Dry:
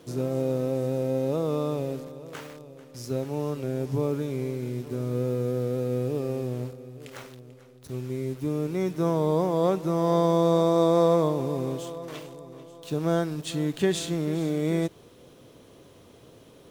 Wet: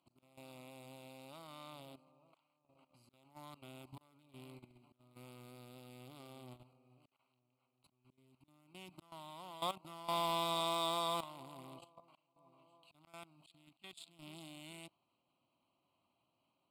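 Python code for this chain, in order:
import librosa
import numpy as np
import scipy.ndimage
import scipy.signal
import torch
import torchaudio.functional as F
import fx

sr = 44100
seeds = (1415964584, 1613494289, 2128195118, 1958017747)

y = fx.wiener(x, sr, points=25)
y = np.diff(y, prepend=0.0)
y = fx.auto_swell(y, sr, attack_ms=497.0)
y = fx.level_steps(y, sr, step_db=15)
y = scipy.signal.sosfilt(scipy.signal.butter(2, 8300.0, 'lowpass', fs=sr, output='sos'), y)
y = np.clip(10.0 ** (34.5 / 20.0) * y, -1.0, 1.0) / 10.0 ** (34.5 / 20.0)
y = fx.fixed_phaser(y, sr, hz=1700.0, stages=6)
y = F.gain(torch.from_numpy(y), 14.0).numpy()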